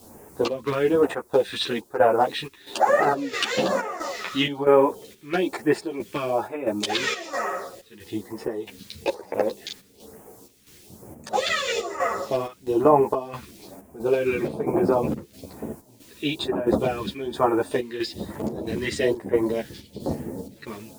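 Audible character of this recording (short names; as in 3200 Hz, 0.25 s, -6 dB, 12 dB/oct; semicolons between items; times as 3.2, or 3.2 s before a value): a quantiser's noise floor 10-bit, dither triangular; phasing stages 2, 1.1 Hz, lowest notch 700–3700 Hz; chopped level 1.5 Hz, depth 65%, duty 70%; a shimmering, thickened sound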